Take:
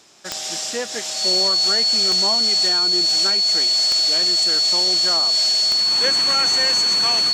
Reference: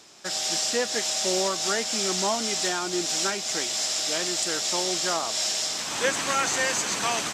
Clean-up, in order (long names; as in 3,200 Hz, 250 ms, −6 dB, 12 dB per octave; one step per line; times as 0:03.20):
click removal
notch filter 4,400 Hz, Q 30